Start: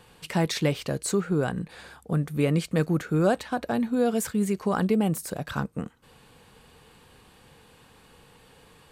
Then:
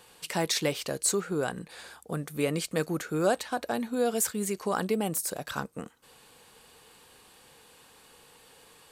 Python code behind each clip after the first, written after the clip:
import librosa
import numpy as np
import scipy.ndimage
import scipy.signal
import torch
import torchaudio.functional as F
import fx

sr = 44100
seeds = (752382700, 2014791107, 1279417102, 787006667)

y = fx.bass_treble(x, sr, bass_db=-10, treble_db=7)
y = F.gain(torch.from_numpy(y), -1.5).numpy()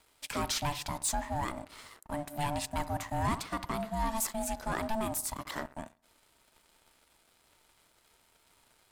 y = fx.echo_wet_lowpass(x, sr, ms=65, feedback_pct=50, hz=1300.0, wet_db=-15.5)
y = y * np.sin(2.0 * np.pi * 440.0 * np.arange(len(y)) / sr)
y = fx.leveller(y, sr, passes=2)
y = F.gain(torch.from_numpy(y), -7.5).numpy()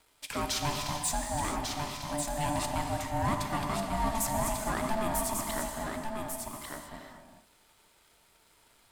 y = x + 10.0 ** (-5.0 / 20.0) * np.pad(x, (int(1145 * sr / 1000.0), 0))[:len(x)]
y = fx.rev_gated(y, sr, seeds[0], gate_ms=470, shape='flat', drr_db=3.5)